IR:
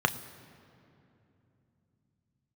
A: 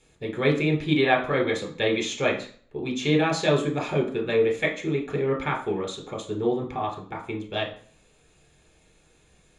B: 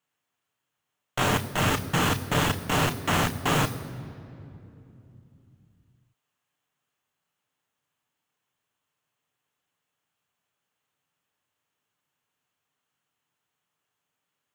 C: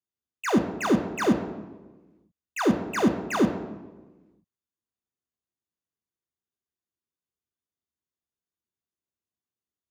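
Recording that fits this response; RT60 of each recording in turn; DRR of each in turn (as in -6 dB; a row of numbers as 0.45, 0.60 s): B; 0.45, 2.9, 1.3 s; 1.0, 9.0, 4.5 dB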